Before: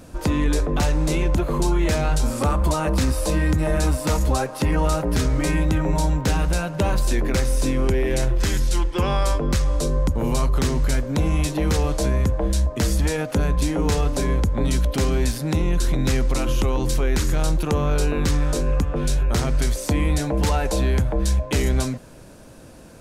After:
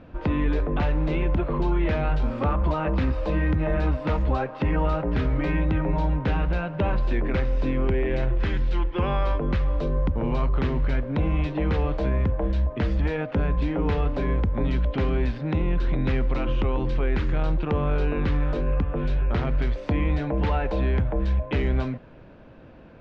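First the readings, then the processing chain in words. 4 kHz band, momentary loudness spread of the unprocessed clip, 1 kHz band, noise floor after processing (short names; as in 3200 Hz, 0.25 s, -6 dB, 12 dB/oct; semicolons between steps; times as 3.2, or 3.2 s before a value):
-11.0 dB, 2 LU, -3.0 dB, -45 dBFS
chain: LPF 3000 Hz 24 dB/oct; gain -3 dB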